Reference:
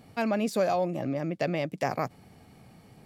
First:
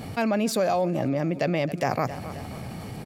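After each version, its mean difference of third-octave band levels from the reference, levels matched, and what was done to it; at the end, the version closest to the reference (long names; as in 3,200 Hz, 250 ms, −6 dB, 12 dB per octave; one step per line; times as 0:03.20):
6.0 dB: parametric band 87 Hz +4 dB
on a send: repeating echo 267 ms, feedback 44%, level −23 dB
on the sum: envelope flattener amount 50%
level +1 dB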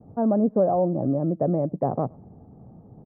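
8.5 dB: downward expander −52 dBFS
Bessel low-pass filter 590 Hz, order 6
slap from a distant wall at 19 metres, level −29 dB
level +8 dB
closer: first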